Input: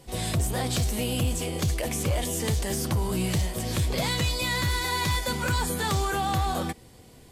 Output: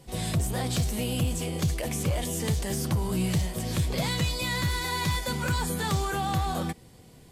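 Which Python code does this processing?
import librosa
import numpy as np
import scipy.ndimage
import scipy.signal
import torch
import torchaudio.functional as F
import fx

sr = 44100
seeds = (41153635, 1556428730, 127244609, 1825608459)

y = fx.peak_eq(x, sr, hz=160.0, db=5.5, octaves=0.69)
y = y * librosa.db_to_amplitude(-2.5)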